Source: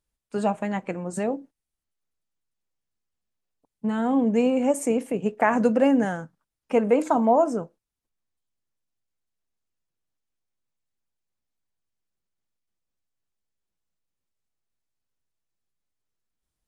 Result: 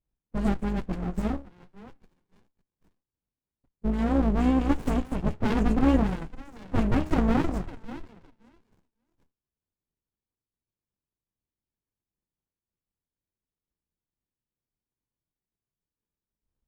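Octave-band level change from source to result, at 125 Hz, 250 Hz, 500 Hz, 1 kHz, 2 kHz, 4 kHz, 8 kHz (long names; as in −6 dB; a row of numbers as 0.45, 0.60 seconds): +7.5 dB, −1.5 dB, −9.5 dB, −7.0 dB, −5.5 dB, can't be measured, below −10 dB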